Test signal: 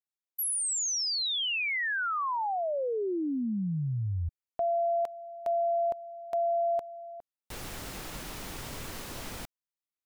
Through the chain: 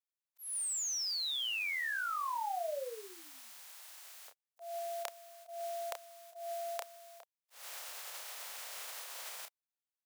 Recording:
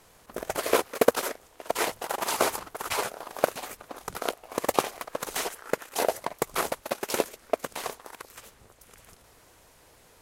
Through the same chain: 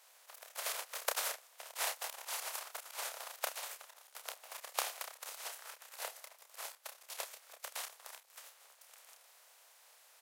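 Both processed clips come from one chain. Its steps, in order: spectral contrast reduction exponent 0.46; steep high-pass 530 Hz 36 dB/octave; slow attack 191 ms; doubling 30 ms -6 dB; trim -6.5 dB

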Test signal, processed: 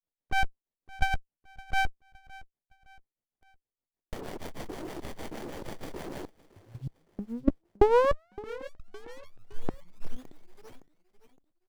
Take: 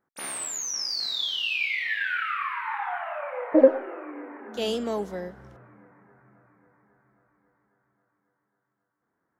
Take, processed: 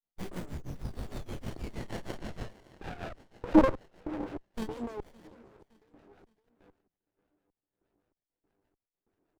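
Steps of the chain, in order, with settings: band-stop 3.8 kHz, Q 8.7; LFO high-pass square 1.6 Hz 340–3600 Hz; level held to a coarse grid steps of 20 dB; harmonic tremolo 6.4 Hz, depth 100%, crossover 600 Hz; feedback delay 564 ms, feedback 40%, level -21 dB; sliding maximum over 33 samples; trim +8.5 dB

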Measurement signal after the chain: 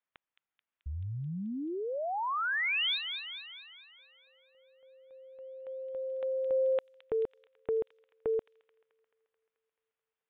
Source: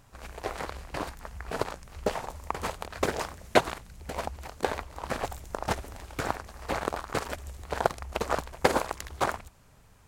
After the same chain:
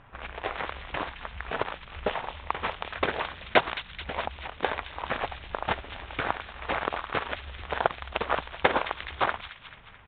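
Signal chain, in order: resampled via 8 kHz; tilt shelf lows -5 dB, about 790 Hz; in parallel at +2 dB: compression 12:1, threshold -44 dBFS; on the sum: short-mantissa float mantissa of 8-bit; feedback echo behind a high-pass 217 ms, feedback 64%, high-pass 3 kHz, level -5 dB; level-controlled noise filter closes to 2 kHz, open at -28.5 dBFS

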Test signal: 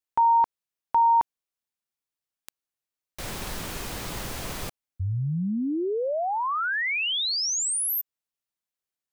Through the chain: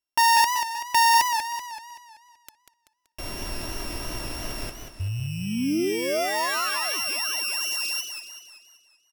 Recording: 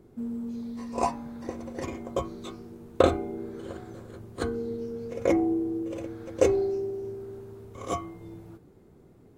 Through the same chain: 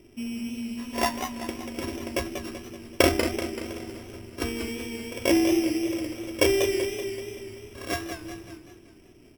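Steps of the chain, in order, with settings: sorted samples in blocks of 16 samples; comb 3.1 ms, depth 49%; modulated delay 191 ms, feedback 50%, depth 129 cents, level -7.5 dB

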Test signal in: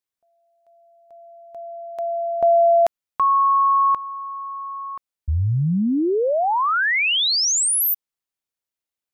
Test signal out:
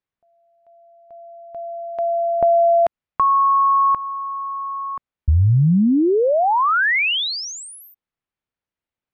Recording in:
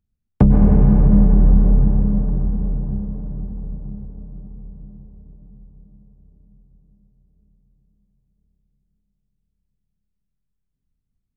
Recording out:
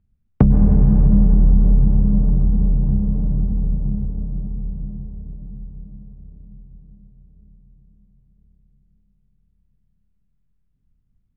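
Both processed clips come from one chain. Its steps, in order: tone controls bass +6 dB, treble -14 dB; compression 2.5:1, threshold -19 dBFS; distance through air 65 m; trim +4.5 dB

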